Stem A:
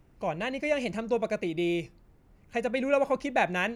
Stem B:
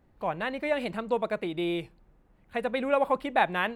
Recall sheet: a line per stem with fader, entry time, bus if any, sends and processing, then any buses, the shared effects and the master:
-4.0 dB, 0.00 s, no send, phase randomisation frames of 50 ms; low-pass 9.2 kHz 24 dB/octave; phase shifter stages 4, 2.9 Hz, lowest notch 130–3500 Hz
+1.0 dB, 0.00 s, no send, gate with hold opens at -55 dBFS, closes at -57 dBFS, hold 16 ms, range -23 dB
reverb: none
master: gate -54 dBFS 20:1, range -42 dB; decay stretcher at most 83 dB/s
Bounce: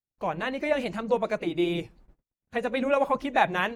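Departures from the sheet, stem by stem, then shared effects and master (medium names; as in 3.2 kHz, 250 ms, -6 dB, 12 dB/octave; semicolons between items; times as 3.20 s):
stem B: missing gate with hold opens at -55 dBFS, closes at -57 dBFS, hold 16 ms, range -23 dB; master: missing decay stretcher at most 83 dB/s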